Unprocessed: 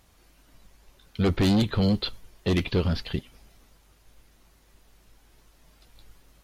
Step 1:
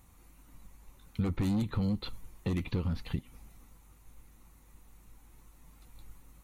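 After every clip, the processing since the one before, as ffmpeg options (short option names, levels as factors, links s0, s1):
-af "equalizer=f=3500:t=o:w=1.7:g=-5.5,acompressor=threshold=0.0282:ratio=4,equalizer=f=400:t=o:w=0.33:g=-9,equalizer=f=630:t=o:w=0.33:g=-12,equalizer=f=1600:t=o:w=0.33:g=-8,equalizer=f=3150:t=o:w=0.33:g=-6,equalizer=f=5000:t=o:w=0.33:g=-11,volume=1.26"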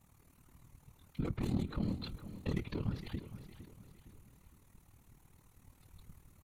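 -af "afftfilt=real='hypot(re,im)*cos(2*PI*random(0))':imag='hypot(re,im)*sin(2*PI*random(1))':win_size=512:overlap=0.75,tremolo=f=38:d=0.71,aecho=1:1:460|920|1380|1840:0.224|0.0918|0.0376|0.0154,volume=1.58"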